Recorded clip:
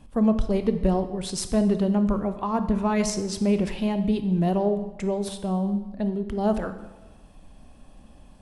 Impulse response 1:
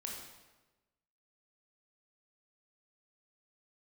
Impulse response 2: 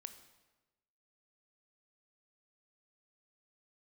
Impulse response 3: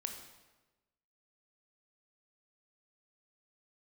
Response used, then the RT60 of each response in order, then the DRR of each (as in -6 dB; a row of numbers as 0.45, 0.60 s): 2; 1.2, 1.1, 1.2 s; -1.5, 9.0, 4.0 dB